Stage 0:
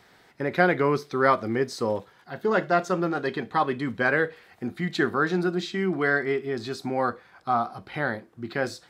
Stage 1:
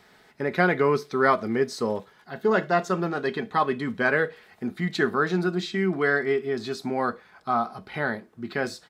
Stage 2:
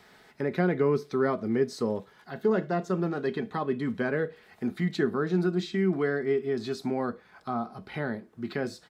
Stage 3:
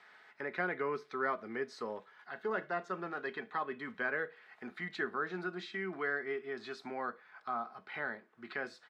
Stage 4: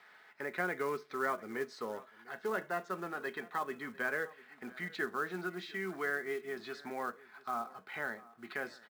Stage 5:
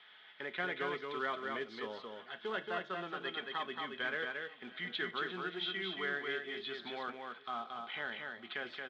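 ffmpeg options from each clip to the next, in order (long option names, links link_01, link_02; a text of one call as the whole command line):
ffmpeg -i in.wav -af "aecho=1:1:4.7:0.35" out.wav
ffmpeg -i in.wav -filter_complex "[0:a]acrossover=split=490[link_01][link_02];[link_02]acompressor=threshold=-42dB:ratio=2[link_03];[link_01][link_03]amix=inputs=2:normalize=0" out.wav
ffmpeg -i in.wav -af "bandpass=frequency=1600:width_type=q:width=1.1:csg=0" out.wav
ffmpeg -i in.wav -af "aecho=1:1:699:0.0891,acrusher=bits=5:mode=log:mix=0:aa=0.000001" out.wav
ffmpeg -i in.wav -af "lowpass=frequency=3300:width_type=q:width=11,aecho=1:1:226:0.631,volume=-4.5dB" out.wav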